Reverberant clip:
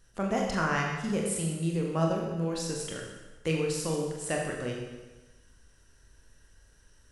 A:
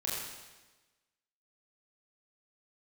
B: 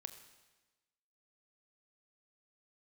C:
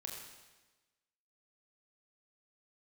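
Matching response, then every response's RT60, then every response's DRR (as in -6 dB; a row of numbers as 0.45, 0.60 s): C; 1.2, 1.2, 1.2 s; -6.5, 8.5, -1.0 dB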